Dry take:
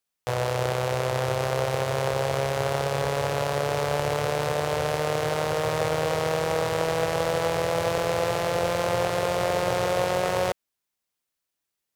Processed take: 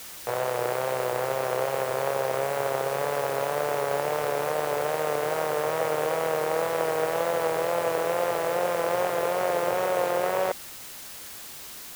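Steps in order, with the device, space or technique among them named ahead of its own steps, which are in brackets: wax cylinder (band-pass 270–2200 Hz; wow and flutter; white noise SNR 14 dB)

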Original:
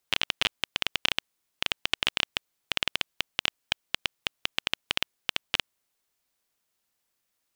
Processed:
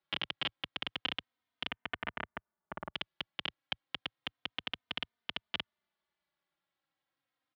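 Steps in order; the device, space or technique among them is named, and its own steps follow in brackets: 1.68–2.93 s: low-pass 2.7 kHz -> 1.2 kHz 24 dB/octave; barber-pole flanger into a guitar amplifier (endless flanger 3.1 ms -0.31 Hz; saturation -18.5 dBFS, distortion -11 dB; cabinet simulation 78–3500 Hz, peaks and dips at 110 Hz -5 dB, 430 Hz -7 dB, 2.6 kHz -6 dB); trim +1.5 dB

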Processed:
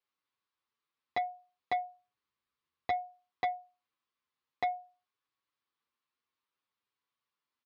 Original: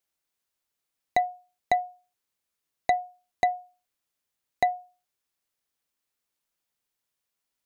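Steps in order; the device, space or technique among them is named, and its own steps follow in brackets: barber-pole flanger into a guitar amplifier (endless flanger 7.8 ms +0.61 Hz; saturation -21 dBFS, distortion -14 dB; cabinet simulation 87–4400 Hz, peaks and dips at 170 Hz -5 dB, 660 Hz -8 dB, 1.1 kHz +10 dB); 1.84–2.97 s: bass shelf 120 Hz +11 dB

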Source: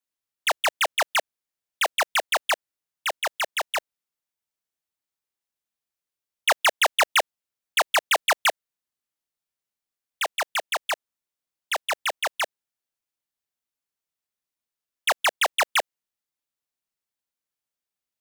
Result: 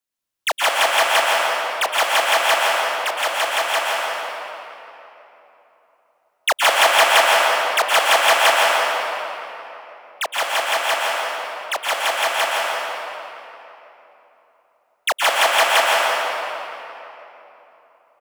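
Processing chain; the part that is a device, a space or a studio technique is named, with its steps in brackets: cave (delay 158 ms -8.5 dB; reverberation RT60 3.4 s, pre-delay 110 ms, DRR -4.5 dB); trim +2 dB

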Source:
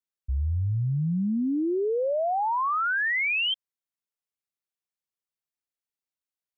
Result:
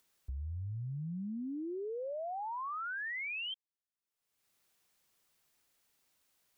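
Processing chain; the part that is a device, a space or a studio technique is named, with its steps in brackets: upward and downward compression (upward compressor, threshold -47 dBFS; compression, threshold -30 dBFS, peak gain reduction 5.5 dB); trim -8 dB

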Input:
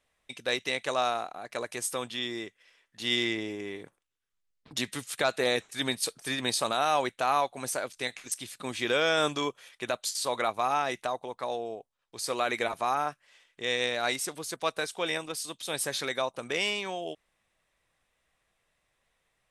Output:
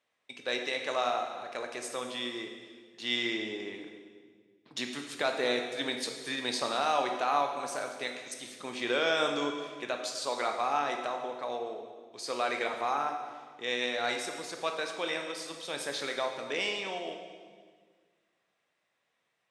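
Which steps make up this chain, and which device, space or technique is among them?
supermarket ceiling speaker (band-pass 200–6400 Hz; reverberation RT60 1.6 s, pre-delay 13 ms, DRR 3.5 dB); trim -3.5 dB

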